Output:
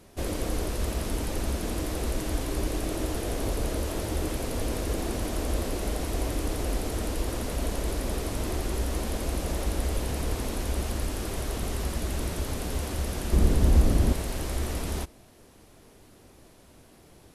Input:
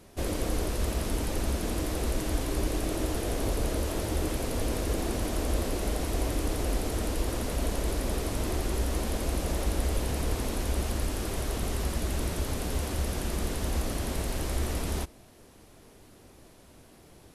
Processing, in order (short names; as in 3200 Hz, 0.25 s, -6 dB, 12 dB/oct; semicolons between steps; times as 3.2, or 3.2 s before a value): 13.32–14.13 low shelf 440 Hz +11.5 dB